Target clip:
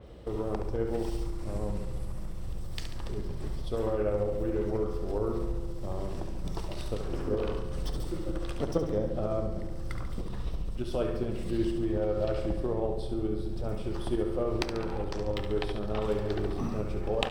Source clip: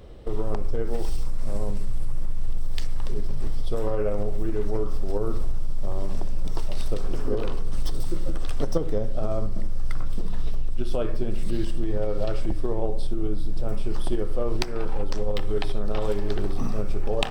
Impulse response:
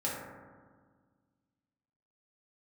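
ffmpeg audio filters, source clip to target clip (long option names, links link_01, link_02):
-filter_complex "[0:a]highpass=44,aecho=1:1:70|140|210|280|350|420|490:0.398|0.219|0.12|0.0662|0.0364|0.02|0.011,asplit=2[link_01][link_02];[1:a]atrim=start_sample=2205,asetrate=27342,aresample=44100[link_03];[link_02][link_03]afir=irnorm=-1:irlink=0,volume=-20.5dB[link_04];[link_01][link_04]amix=inputs=2:normalize=0,adynamicequalizer=threshold=0.00224:dfrequency=4200:dqfactor=0.7:tfrequency=4200:tqfactor=0.7:attack=5:release=100:ratio=0.375:range=2.5:mode=cutabove:tftype=highshelf,volume=-3.5dB"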